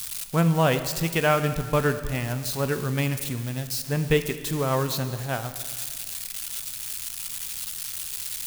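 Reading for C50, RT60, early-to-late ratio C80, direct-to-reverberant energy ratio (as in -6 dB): 10.5 dB, 1.8 s, 11.5 dB, 9.0 dB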